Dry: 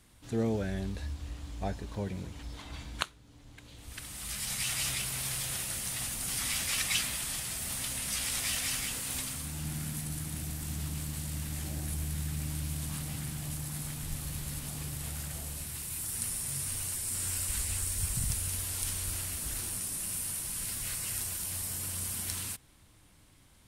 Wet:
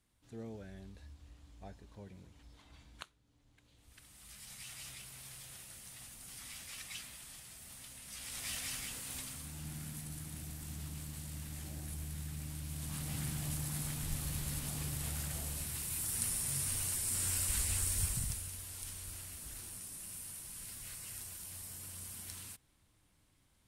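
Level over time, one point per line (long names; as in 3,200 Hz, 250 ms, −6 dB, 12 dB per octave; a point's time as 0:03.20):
0:08.04 −16 dB
0:08.51 −8 dB
0:12.64 −8 dB
0:13.21 −1 dB
0:18.00 −1 dB
0:18.53 −11 dB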